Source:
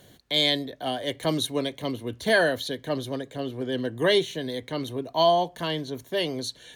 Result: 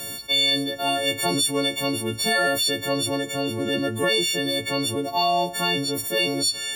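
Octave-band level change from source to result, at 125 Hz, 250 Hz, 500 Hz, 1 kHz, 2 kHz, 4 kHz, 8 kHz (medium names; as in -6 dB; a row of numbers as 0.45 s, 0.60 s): +2.0 dB, +3.5 dB, 0.0 dB, +2.5 dB, +4.0 dB, +6.0 dB, +13.5 dB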